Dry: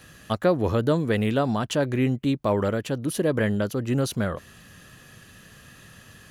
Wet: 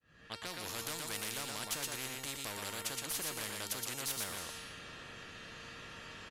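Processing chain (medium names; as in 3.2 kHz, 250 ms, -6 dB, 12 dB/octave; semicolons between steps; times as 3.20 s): fade-in on the opening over 0.79 s; level-controlled noise filter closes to 1.8 kHz, open at -23.5 dBFS; peaking EQ 10 kHz +14 dB 3 oct; one-sided clip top -16.5 dBFS; feedback comb 460 Hz, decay 0.74 s, mix 90%; on a send: delay 119 ms -6.5 dB; on the sum: resampled via 32 kHz; spectrum-flattening compressor 4:1; trim +4.5 dB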